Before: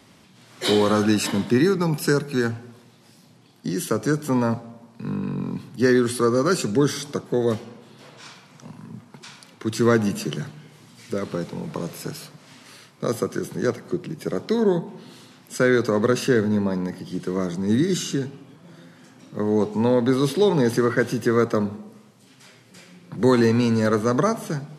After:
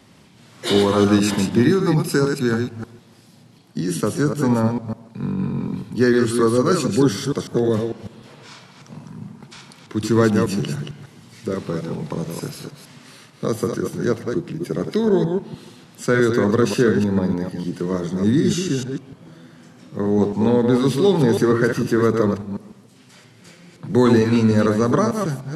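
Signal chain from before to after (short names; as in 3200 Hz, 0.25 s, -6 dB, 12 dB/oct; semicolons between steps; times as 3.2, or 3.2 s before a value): reverse delay 0.145 s, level -5 dB; low shelf 370 Hz +3.5 dB; varispeed -3%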